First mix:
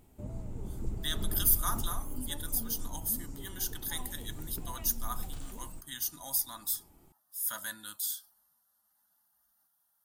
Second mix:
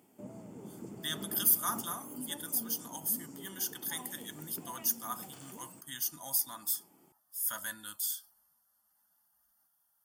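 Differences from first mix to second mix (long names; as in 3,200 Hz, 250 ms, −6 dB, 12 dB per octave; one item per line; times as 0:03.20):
background: add high-pass filter 170 Hz 24 dB per octave
master: add Butterworth band-reject 3,900 Hz, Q 7.2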